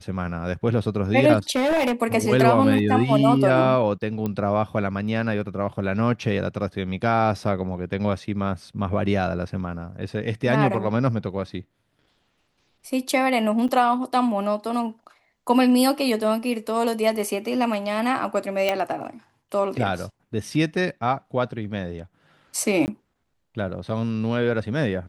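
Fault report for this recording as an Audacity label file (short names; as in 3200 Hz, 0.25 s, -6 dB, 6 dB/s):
1.550000	1.930000	clipped -17 dBFS
4.260000	4.260000	pop -15 dBFS
13.680000	13.690000	gap 7 ms
18.690000	18.690000	pop -8 dBFS
22.860000	22.880000	gap 19 ms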